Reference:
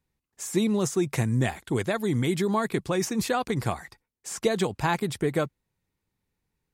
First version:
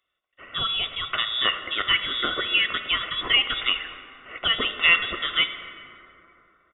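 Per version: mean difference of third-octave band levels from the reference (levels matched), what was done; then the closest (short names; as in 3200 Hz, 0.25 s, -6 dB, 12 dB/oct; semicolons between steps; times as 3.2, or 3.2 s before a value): 15.5 dB: HPF 850 Hz 6 dB/oct; comb 1.3 ms, depth 80%; inverted band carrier 3600 Hz; plate-style reverb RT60 3.1 s, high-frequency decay 0.4×, DRR 7.5 dB; gain +7.5 dB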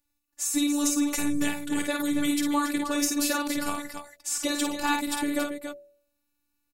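11.0 dB: robotiser 291 Hz; high shelf 4100 Hz +10 dB; de-hum 82.23 Hz, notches 8; on a send: loudspeakers at several distances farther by 18 m -5 dB, 96 m -8 dB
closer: second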